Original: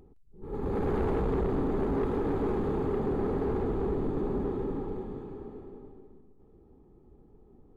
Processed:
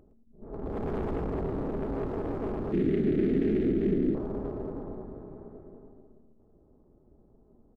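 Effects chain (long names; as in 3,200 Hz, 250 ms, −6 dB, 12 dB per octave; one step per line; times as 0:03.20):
adaptive Wiener filter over 15 samples
amplitude modulation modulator 230 Hz, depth 65%
0:02.72–0:04.15: drawn EQ curve 110 Hz 0 dB, 190 Hz +10 dB, 350 Hz +11 dB, 500 Hz −3 dB, 1,000 Hz −19 dB, 1,900 Hz +11 dB, 3,600 Hz +12 dB, 5,400 Hz +3 dB
on a send: single-tap delay 112 ms −13 dB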